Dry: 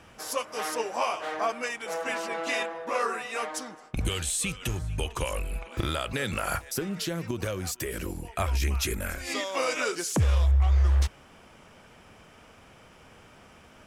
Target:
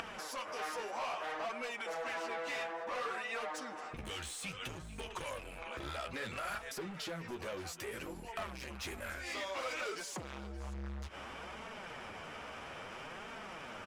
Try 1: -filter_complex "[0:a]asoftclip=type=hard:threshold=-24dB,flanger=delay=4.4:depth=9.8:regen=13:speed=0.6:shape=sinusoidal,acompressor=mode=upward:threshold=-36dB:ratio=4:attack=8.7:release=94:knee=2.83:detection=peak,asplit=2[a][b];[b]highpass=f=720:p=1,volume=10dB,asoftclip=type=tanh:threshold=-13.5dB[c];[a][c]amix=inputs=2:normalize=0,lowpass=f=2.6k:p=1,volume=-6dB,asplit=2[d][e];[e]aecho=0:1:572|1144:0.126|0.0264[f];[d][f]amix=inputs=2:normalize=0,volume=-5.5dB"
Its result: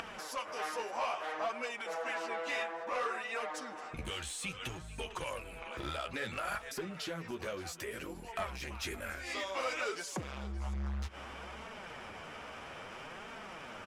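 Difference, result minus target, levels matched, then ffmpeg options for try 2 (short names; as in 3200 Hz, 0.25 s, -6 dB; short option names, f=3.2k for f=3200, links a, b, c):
hard clip: distortion -5 dB
-filter_complex "[0:a]asoftclip=type=hard:threshold=-30.5dB,flanger=delay=4.4:depth=9.8:regen=13:speed=0.6:shape=sinusoidal,acompressor=mode=upward:threshold=-36dB:ratio=4:attack=8.7:release=94:knee=2.83:detection=peak,asplit=2[a][b];[b]highpass=f=720:p=1,volume=10dB,asoftclip=type=tanh:threshold=-13.5dB[c];[a][c]amix=inputs=2:normalize=0,lowpass=f=2.6k:p=1,volume=-6dB,asplit=2[d][e];[e]aecho=0:1:572|1144:0.126|0.0264[f];[d][f]amix=inputs=2:normalize=0,volume=-5.5dB"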